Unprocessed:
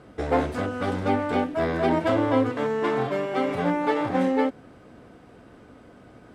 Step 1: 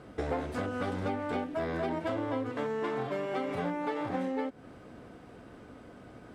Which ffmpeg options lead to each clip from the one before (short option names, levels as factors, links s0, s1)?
-af "acompressor=threshold=0.0355:ratio=6,volume=0.891"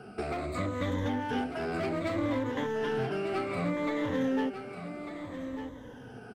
-filter_complex "[0:a]afftfilt=real='re*pow(10,17/40*sin(2*PI*(1.1*log(max(b,1)*sr/1024/100)/log(2)-(-0.63)*(pts-256)/sr)))':imag='im*pow(10,17/40*sin(2*PI*(1.1*log(max(b,1)*sr/1024/100)/log(2)-(-0.63)*(pts-256)/sr)))':win_size=1024:overlap=0.75,acrossover=split=360|1300[s0][s1][s2];[s1]asoftclip=type=hard:threshold=0.015[s3];[s0][s3][s2]amix=inputs=3:normalize=0,aecho=1:1:1197:0.335"